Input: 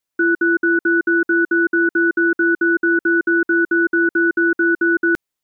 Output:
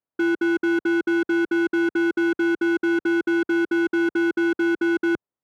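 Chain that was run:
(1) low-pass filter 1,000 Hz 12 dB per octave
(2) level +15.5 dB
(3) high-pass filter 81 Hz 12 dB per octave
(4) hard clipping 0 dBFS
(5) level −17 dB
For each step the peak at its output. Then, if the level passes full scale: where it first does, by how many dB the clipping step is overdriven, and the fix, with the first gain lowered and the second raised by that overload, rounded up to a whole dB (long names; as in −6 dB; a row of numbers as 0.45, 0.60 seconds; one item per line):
−12.0, +3.5, +3.5, 0.0, −17.0 dBFS
step 2, 3.5 dB
step 2 +11.5 dB, step 5 −13 dB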